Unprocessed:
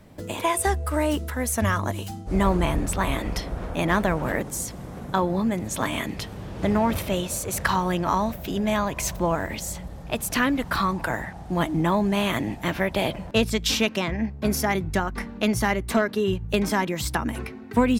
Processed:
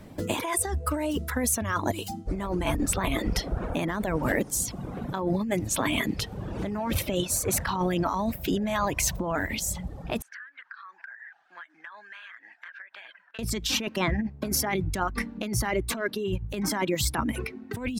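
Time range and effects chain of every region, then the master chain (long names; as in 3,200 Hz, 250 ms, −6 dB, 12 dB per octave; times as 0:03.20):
0:10.22–0:13.39: four-pole ladder band-pass 1,700 Hz, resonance 80% + downward compressor 20 to 1, threshold −41 dBFS
whole clip: reverb reduction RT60 1 s; parametric band 280 Hz +3 dB 1 octave; compressor whose output falls as the input rises −27 dBFS, ratio −1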